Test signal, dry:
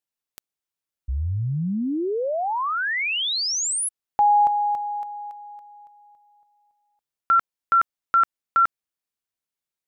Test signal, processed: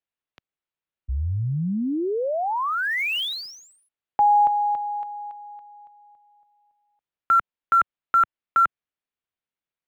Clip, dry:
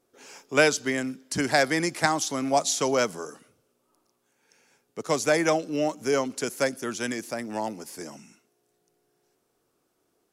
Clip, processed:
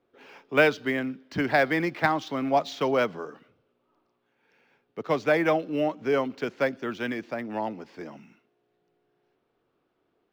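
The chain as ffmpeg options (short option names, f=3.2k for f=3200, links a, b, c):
-filter_complex "[0:a]lowpass=f=3.5k:w=0.5412,lowpass=f=3.5k:w=1.3066,acrossover=split=120|2200[a][b][c];[c]acrusher=bits=4:mode=log:mix=0:aa=0.000001[d];[a][b][d]amix=inputs=3:normalize=0"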